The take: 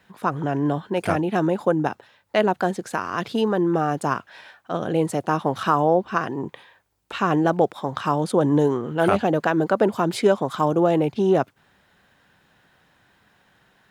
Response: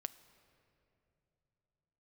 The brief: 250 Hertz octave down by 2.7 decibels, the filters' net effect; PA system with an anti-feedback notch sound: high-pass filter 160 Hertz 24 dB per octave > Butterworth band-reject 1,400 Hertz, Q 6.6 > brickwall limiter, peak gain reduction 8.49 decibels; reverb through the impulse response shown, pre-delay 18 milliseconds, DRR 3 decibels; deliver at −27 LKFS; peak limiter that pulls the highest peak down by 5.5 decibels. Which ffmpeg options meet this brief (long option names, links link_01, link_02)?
-filter_complex "[0:a]equalizer=frequency=250:width_type=o:gain=-3.5,alimiter=limit=-12dB:level=0:latency=1,asplit=2[link_01][link_02];[1:a]atrim=start_sample=2205,adelay=18[link_03];[link_02][link_03]afir=irnorm=-1:irlink=0,volume=0dB[link_04];[link_01][link_04]amix=inputs=2:normalize=0,highpass=frequency=160:width=0.5412,highpass=frequency=160:width=1.3066,asuperstop=centerf=1400:order=8:qfactor=6.6,volume=-1dB,alimiter=limit=-16dB:level=0:latency=1"